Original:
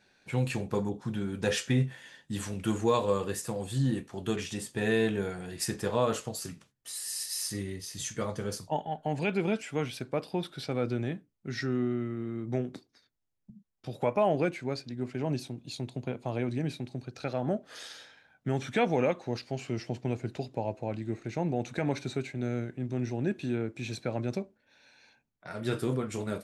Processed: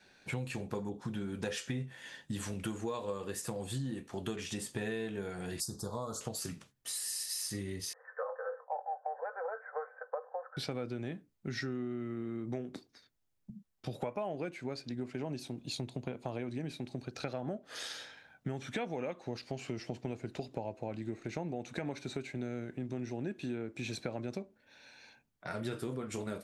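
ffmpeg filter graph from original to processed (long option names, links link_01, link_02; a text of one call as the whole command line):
ffmpeg -i in.wav -filter_complex "[0:a]asettb=1/sr,asplit=3[link_01][link_02][link_03];[link_01]atrim=end=5.604[link_04];[link_02]atrim=start=5.6:end=6.21,asetpts=PTS-STARTPTS,afade=type=in:duration=0.004:curve=qsin,afade=type=out:start_time=0.606:duration=0.004:curve=qsin,asuperstop=centerf=2300:order=8:qfactor=0.83,equalizer=frequency=450:width=0.48:gain=-9.5[link_05];[link_03]atrim=start=6.206[link_06];[link_04][link_05]acrossfade=duration=0.004:curve1=hsin:curve2=qsin[link_07];[link_07][link_06]acrossfade=duration=0.004:curve1=qsin:curve2=hsin,asettb=1/sr,asplit=3[link_08][link_09][link_10];[link_08]atrim=end=7.934[link_11];[link_09]atrim=start=7.93:end=10.57,asetpts=PTS-STARTPTS,afade=type=in:duration=0.004:curve=qsin,afade=type=out:start_time=2.636:duration=0.004:curve=qsin,asuperpass=centerf=910:order=20:qfactor=0.72,aecho=1:1:3.9:0.57,atrim=end_sample=116424[link_12];[link_10]atrim=start=10.566[link_13];[link_11][link_12]acrossfade=duration=0.004:curve1=hsin:curve2=qsin[link_14];[link_14][link_13]acrossfade=duration=0.004:curve1=qsin:curve2=hsin,adynamicequalizer=threshold=0.00447:dfrequency=120:dqfactor=1.9:tfrequency=120:tqfactor=1.9:attack=5:release=100:ratio=0.375:range=2.5:mode=cutabove:tftype=bell,acompressor=threshold=-38dB:ratio=6,volume=3dB" out.wav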